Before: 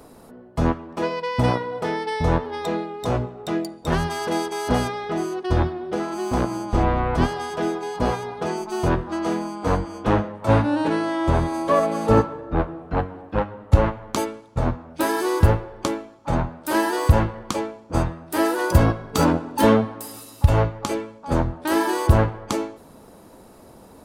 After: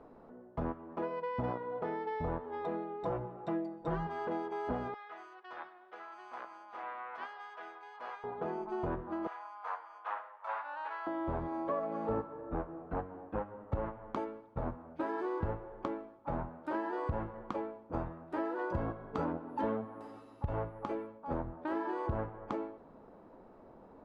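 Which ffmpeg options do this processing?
-filter_complex "[0:a]asettb=1/sr,asplit=3[a][b][c];[a]atrim=end=3.034[d];[b]atrim=start=3.03:end=4.07,asetpts=PTS-STARTPTS,afade=t=in:d=0.004:c=qsin,afade=t=out:st=1.036:d=0.004:c=qsin,aecho=1:1:5.9:0.96,atrim=end_sample=45864[e];[c]atrim=start=4.066[f];[d][e]acrossfade=d=0.004:c1=hsin:c2=qsin[g];[g][f]acrossfade=d=0.004:c1=qsin:c2=hsin,asettb=1/sr,asplit=3[h][i][j];[h]atrim=end=4.944[k];[i]atrim=start=4.94:end=8.24,asetpts=PTS-STARTPTS,afade=t=in:d=0.004:c=qsin,afade=t=out:st=3.296:d=0.004:c=qsin,highpass=1.5k[l];[j]atrim=start=8.236[m];[k][l]acrossfade=d=0.004:c1=hsin:c2=qsin[n];[n][m]acrossfade=d=0.004:c1=qsin:c2=hsin,asettb=1/sr,asplit=3[o][p][q];[o]atrim=end=9.274[r];[p]atrim=start=9.27:end=11.07,asetpts=PTS-STARTPTS,afade=t=in:d=0.004:c=qsin,afade=t=out:st=1.796:d=0.004:c=qsin,highpass=f=910:w=0.5412,highpass=f=910:w=1.3066[s];[q]atrim=start=11.066[t];[r][s]acrossfade=d=0.004:c1=hsin:c2=qsin[u];[u][t]acrossfade=d=0.004:c1=qsin:c2=hsin,asettb=1/sr,asplit=3[v][w][x];[v]atrim=end=19.494[y];[w]atrim=start=19.49:end=21.07,asetpts=PTS-STARTPTS,afade=t=in:d=0.004:c=qsin,afade=t=out:st=1.576:d=0.004:c=qsin,aeval=exprs='val(0)+0.0126*sin(2*PI*11000*n/s)':c=same[z];[x]atrim=start=21.066[aa];[y][z]acrossfade=d=0.004:c1=hsin:c2=qsin[ab];[ab][aa]acrossfade=d=0.004:c1=qsin:c2=hsin,lowpass=1.4k,equalizer=f=86:w=0.53:g=-7,acompressor=threshold=-27dB:ratio=3,volume=-7dB"

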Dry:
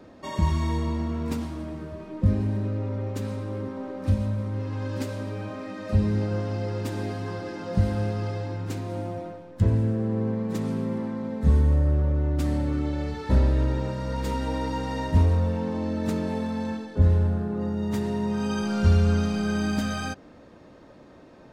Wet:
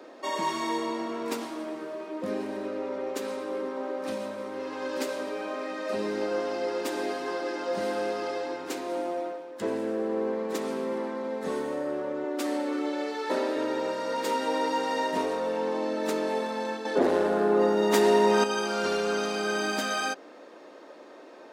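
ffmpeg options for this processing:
-filter_complex "[0:a]asettb=1/sr,asplit=3[a][b][c];[a]atrim=end=12.244[d];[b]atrim=start=12.24:end=13.56,asetpts=PTS-STARTPTS,afade=t=in:d=0.004:c=qsin,afade=t=out:st=1.316:d=0.004:c=qsin,highpass=f=230:w=0.5412,highpass=f=230:w=1.3066[e];[c]atrim=start=13.556[f];[d][e]acrossfade=d=0.004:c1=hsin:c2=qsin[g];[g][f]acrossfade=d=0.004:c1=qsin:c2=hsin,asettb=1/sr,asplit=3[h][i][j];[h]atrim=end=16.854[k];[i]atrim=start=16.85:end=18.44,asetpts=PTS-STARTPTS,afade=t=in:d=0.004:c=qsin,afade=t=out:st=1.586:d=0.004:c=qsin,aeval=exprs='0.335*sin(PI/2*1.78*val(0)/0.335)':c=same[l];[j]atrim=start=18.436[m];[k][l]acrossfade=d=0.004:c1=hsin:c2=qsin[n];[n][m]acrossfade=d=0.004:c1=qsin:c2=hsin,highpass=f=330:w=0.5412,highpass=f=330:w=1.3066,volume=4.5dB"

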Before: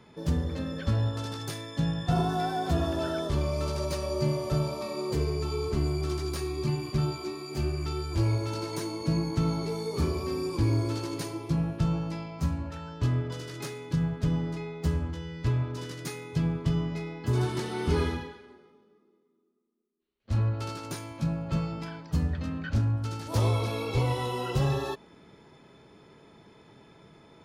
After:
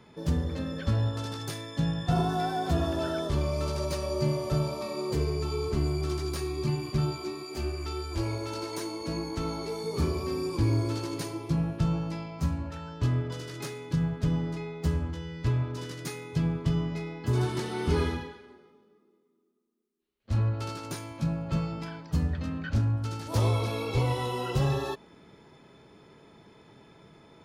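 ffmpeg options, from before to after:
-filter_complex "[0:a]asettb=1/sr,asplit=3[a][b][c];[a]atrim=end=7.434[d];[b]atrim=start=7.43:end=9.84,asetpts=PTS-STARTPTS,afade=t=in:d=0.004:c=qsin,afade=t=out:st=2.406:d=0.004:c=qsin,equalizer=f=140:t=o:w=0.77:g=-14[e];[c]atrim=start=9.836[f];[d][e]acrossfade=d=0.004:c1=hsin:c2=qsin[g];[g][f]acrossfade=d=0.004:c1=qsin:c2=hsin"

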